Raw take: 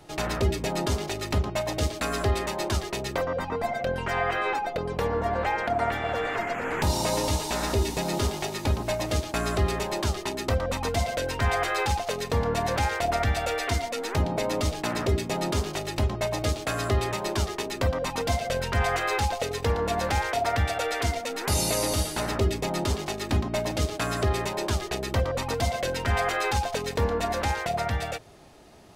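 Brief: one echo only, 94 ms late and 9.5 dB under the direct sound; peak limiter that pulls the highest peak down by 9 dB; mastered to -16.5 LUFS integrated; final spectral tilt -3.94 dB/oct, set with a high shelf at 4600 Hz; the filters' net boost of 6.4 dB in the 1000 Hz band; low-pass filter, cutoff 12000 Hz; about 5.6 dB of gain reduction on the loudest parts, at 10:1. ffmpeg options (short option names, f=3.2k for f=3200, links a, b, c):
-af "lowpass=12k,equalizer=f=1k:t=o:g=8.5,highshelf=f=4.6k:g=5,acompressor=threshold=-23dB:ratio=10,alimiter=limit=-21dB:level=0:latency=1,aecho=1:1:94:0.335,volume=13dB"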